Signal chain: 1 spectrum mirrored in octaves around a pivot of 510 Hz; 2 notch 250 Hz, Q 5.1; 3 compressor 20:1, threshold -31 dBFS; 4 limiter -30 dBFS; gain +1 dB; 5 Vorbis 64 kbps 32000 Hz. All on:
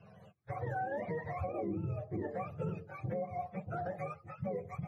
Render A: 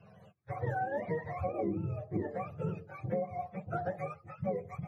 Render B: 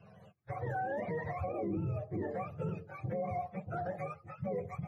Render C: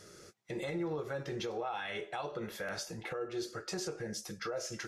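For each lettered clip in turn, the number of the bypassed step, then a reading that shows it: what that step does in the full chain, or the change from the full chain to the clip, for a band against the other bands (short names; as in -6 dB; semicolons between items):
4, crest factor change +5.0 dB; 3, mean gain reduction 3.5 dB; 1, 125 Hz band -7.5 dB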